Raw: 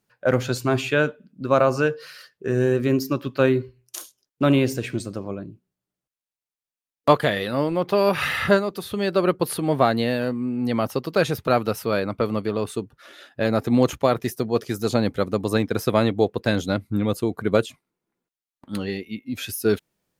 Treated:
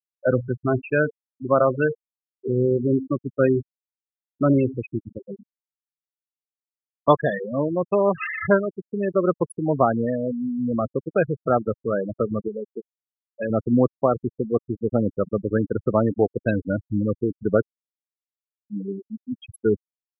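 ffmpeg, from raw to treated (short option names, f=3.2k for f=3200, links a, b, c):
-filter_complex "[0:a]asettb=1/sr,asplit=3[a][b][c];[a]atrim=end=12.484[d];[b]atrim=start=12.48:end=13.5,asetpts=PTS-STARTPTS,afade=t=in:d=0.004:c=qsin,afade=t=out:st=1.016:d=0.004:c=qsin,tiltshelf=f=1.5k:g=-4.5[e];[c]atrim=start=13.496[f];[d][e]acrossfade=d=0.004:c1=hsin:c2=qsin[g];[g][f]acrossfade=d=0.004:c1=qsin:c2=hsin,afftfilt=real='re*gte(hypot(re,im),0.2)':imag='im*gte(hypot(re,im),0.2)':win_size=1024:overlap=0.75"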